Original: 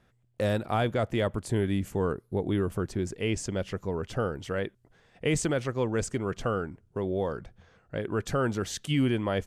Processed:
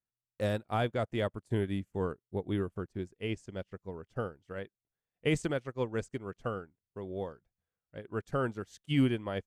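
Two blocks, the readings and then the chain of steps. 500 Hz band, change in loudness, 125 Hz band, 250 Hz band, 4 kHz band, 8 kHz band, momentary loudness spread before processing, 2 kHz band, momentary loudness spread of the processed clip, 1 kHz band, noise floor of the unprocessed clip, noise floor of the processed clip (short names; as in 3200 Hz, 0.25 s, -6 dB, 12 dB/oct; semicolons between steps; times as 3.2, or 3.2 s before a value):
-5.5 dB, -5.0 dB, -5.5 dB, -4.5 dB, -5.5 dB, -15.0 dB, 6 LU, -5.0 dB, 13 LU, -5.5 dB, -67 dBFS, under -85 dBFS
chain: upward expander 2.5:1, over -45 dBFS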